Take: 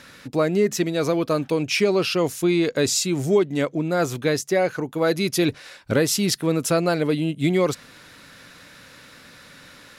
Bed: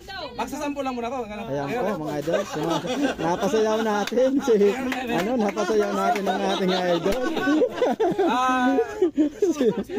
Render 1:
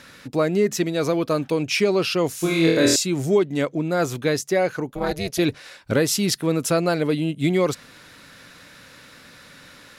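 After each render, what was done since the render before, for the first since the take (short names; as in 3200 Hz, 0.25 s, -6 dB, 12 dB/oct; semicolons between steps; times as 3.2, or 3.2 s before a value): 2.38–2.96 flutter echo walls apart 4.2 m, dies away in 0.76 s; 4.9–5.39 AM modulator 290 Hz, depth 95%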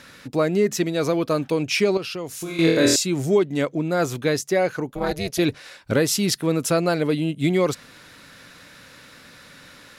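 1.97–2.59 compressor 3:1, threshold -30 dBFS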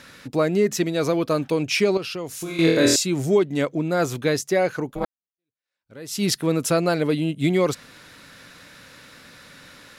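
5.05–6.23 fade in exponential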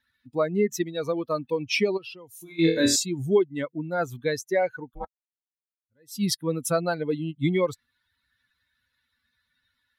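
per-bin expansion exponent 2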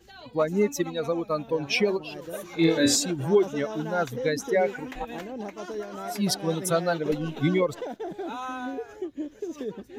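add bed -13 dB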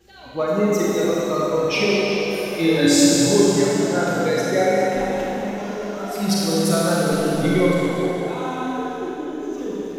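Schroeder reverb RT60 2.9 s, combs from 31 ms, DRR -5.5 dB; warbling echo 0.2 s, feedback 59%, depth 52 cents, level -10 dB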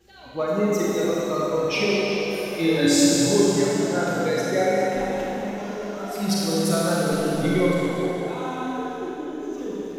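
gain -3 dB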